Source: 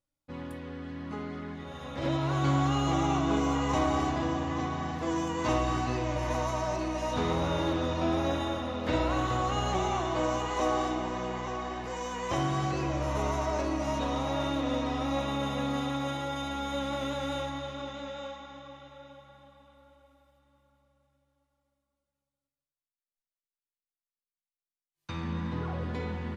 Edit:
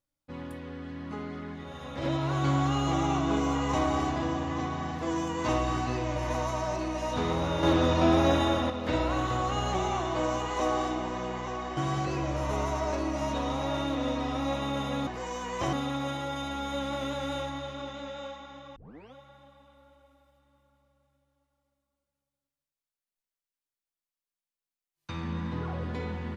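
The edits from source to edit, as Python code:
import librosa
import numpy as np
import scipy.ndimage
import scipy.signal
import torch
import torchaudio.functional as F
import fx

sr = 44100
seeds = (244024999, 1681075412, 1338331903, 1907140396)

y = fx.edit(x, sr, fx.clip_gain(start_s=7.63, length_s=1.07, db=6.0),
    fx.move(start_s=11.77, length_s=0.66, to_s=15.73),
    fx.tape_start(start_s=18.76, length_s=0.38), tone=tone)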